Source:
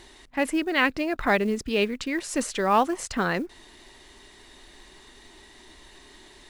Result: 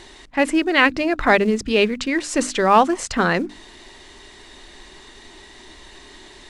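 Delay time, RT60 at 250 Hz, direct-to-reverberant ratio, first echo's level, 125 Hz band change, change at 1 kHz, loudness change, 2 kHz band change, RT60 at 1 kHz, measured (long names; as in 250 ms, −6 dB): no echo audible, no reverb audible, no reverb audible, no echo audible, +6.0 dB, +7.0 dB, +7.0 dB, +7.0 dB, no reverb audible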